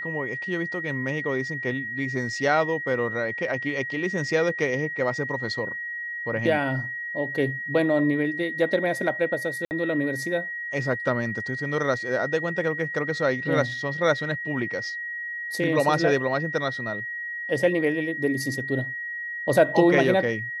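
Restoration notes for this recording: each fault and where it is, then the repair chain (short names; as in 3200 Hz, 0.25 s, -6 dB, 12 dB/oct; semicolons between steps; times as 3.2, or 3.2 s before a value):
tone 1900 Hz -30 dBFS
9.65–9.71 gap 59 ms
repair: notch 1900 Hz, Q 30; interpolate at 9.65, 59 ms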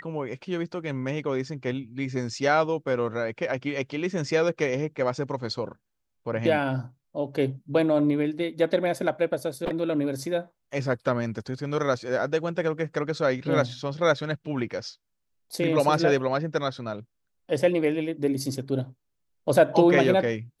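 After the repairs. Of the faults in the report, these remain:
none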